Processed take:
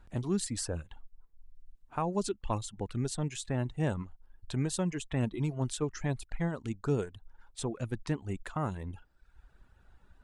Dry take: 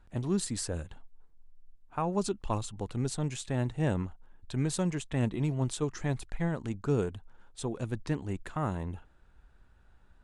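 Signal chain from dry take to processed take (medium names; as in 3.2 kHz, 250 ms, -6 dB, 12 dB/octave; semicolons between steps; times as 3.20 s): reverb removal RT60 0.79 s; in parallel at -2.5 dB: compression, threshold -41 dBFS, peak gain reduction 17 dB; on the sum: trim -2 dB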